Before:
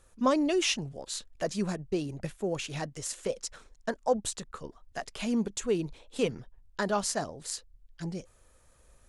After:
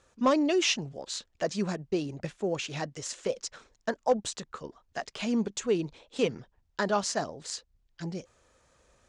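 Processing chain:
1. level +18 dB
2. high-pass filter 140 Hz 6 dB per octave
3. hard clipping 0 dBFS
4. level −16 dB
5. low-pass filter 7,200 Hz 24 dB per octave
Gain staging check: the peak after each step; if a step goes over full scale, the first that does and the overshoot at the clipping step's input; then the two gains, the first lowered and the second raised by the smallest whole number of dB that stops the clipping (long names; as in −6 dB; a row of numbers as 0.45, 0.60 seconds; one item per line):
+5.5, +5.5, 0.0, −16.0, −15.5 dBFS
step 1, 5.5 dB
step 1 +12 dB, step 4 −10 dB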